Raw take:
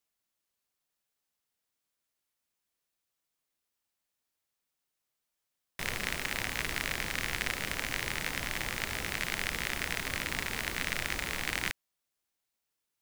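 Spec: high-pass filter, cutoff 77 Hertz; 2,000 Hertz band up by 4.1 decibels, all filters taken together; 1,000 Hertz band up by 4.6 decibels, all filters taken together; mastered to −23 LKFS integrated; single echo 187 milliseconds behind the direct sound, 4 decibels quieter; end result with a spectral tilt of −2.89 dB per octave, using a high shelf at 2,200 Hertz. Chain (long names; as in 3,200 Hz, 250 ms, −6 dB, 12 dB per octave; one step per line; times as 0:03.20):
high-pass filter 77 Hz
parametric band 1,000 Hz +5 dB
parametric band 2,000 Hz +5 dB
high-shelf EQ 2,200 Hz −3 dB
single-tap delay 187 ms −4 dB
level +6.5 dB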